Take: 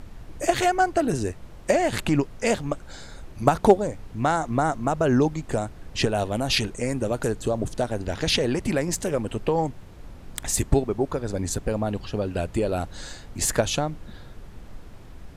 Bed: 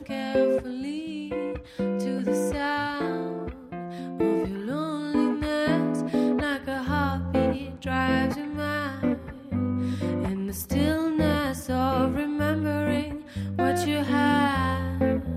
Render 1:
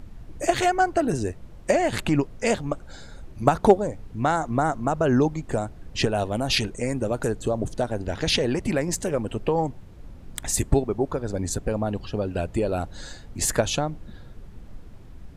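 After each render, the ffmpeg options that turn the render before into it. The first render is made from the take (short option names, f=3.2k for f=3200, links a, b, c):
-af "afftdn=nr=6:nf=-44"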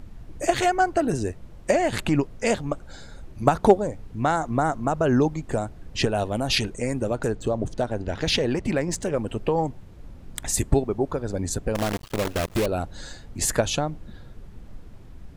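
-filter_complex "[0:a]asettb=1/sr,asplit=3[a][b][c];[a]atrim=end=7.134[d];[b]atrim=start=7.13:end=9.16,asetpts=PTS-STARTPTS,afade=t=in:d=0.004:c=qsin,afade=t=out:st=2.026:d=0.004:c=qsin,adynamicsmooth=sensitivity=7.5:basefreq=7.4k[e];[c]atrim=start=9.156[f];[d][e]acrossfade=d=0.004:c1=hsin:c2=qsin[g];[g][f]acrossfade=d=0.004:c1=qsin:c2=hsin,asettb=1/sr,asplit=3[h][i][j];[h]atrim=end=11.754[k];[i]atrim=start=11.75:end=12.66,asetpts=PTS-STARTPTS,afade=t=in:d=0.004:c=qsin,afade=t=out:st=0.906:d=0.004:c=qsin,acrusher=bits=5:dc=4:mix=0:aa=0.000001[l];[j]atrim=start=12.656[m];[k][l]acrossfade=d=0.004:c1=hsin:c2=qsin[n];[n][m]acrossfade=d=0.004:c1=qsin:c2=hsin"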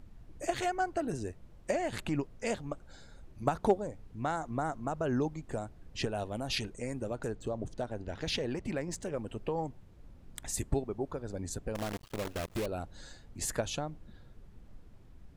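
-af "volume=-11dB"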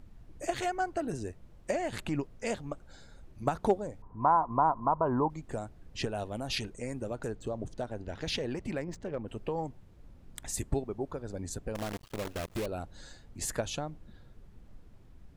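-filter_complex "[0:a]asettb=1/sr,asplit=3[a][b][c];[a]atrim=end=4.024[d];[b]atrim=start=4.02:end=5.3,asetpts=PTS-STARTPTS,afade=t=in:d=0.004:c=qsin,afade=t=out:st=1.276:d=0.004:c=qsin,lowpass=f=1k:t=q:w=12[e];[c]atrim=start=5.296[f];[d][e]acrossfade=d=0.004:c1=hsin:c2=qsin[g];[g][f]acrossfade=d=0.004:c1=qsin:c2=hsin,asettb=1/sr,asplit=3[h][i][j];[h]atrim=end=8.844[k];[i]atrim=start=8.84:end=9.28,asetpts=PTS-STARTPTS,afade=t=in:d=0.004:c=qsin,afade=t=out:st=0.436:d=0.004:c=qsin,adynamicsmooth=sensitivity=7.5:basefreq=2.3k[l];[j]atrim=start=9.276[m];[k][l]acrossfade=d=0.004:c1=hsin:c2=qsin[n];[n][m]acrossfade=d=0.004:c1=qsin:c2=hsin"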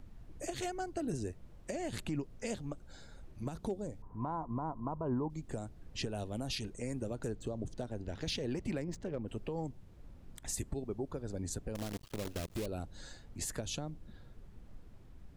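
-filter_complex "[0:a]acrossover=split=440|3000[a][b][c];[b]acompressor=threshold=-51dB:ratio=2[d];[a][d][c]amix=inputs=3:normalize=0,alimiter=level_in=3dB:limit=-24dB:level=0:latency=1:release=104,volume=-3dB"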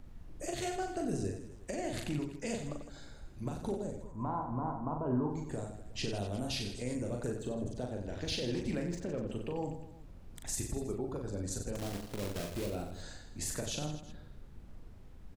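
-af "aecho=1:1:40|92|159.6|247.5|361.7:0.631|0.398|0.251|0.158|0.1"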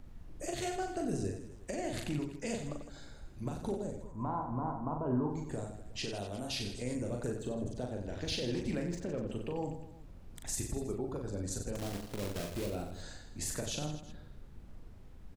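-filter_complex "[0:a]asettb=1/sr,asplit=3[a][b][c];[a]atrim=end=5.984[d];[b]atrim=start=5.98:end=6.6,asetpts=PTS-STARTPTS,afade=t=in:d=0.004:c=qsin,afade=t=out:st=0.616:d=0.004:c=qsin,lowshelf=f=290:g=-6.5[e];[c]atrim=start=6.596[f];[d][e]acrossfade=d=0.004:c1=hsin:c2=qsin[g];[g][f]acrossfade=d=0.004:c1=qsin:c2=hsin"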